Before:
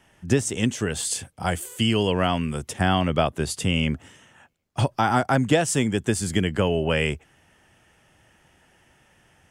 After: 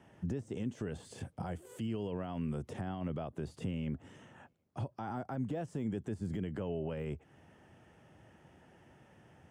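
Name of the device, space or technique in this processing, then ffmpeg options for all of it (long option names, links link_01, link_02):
broadcast voice chain: -af "highpass=88,deesser=0.75,acompressor=threshold=-36dB:ratio=3,equalizer=frequency=5000:width_type=o:width=2.1:gain=3.5,alimiter=level_in=5.5dB:limit=-24dB:level=0:latency=1:release=51,volume=-5.5dB,tiltshelf=frequency=1500:gain=9.5,volume=-6.5dB"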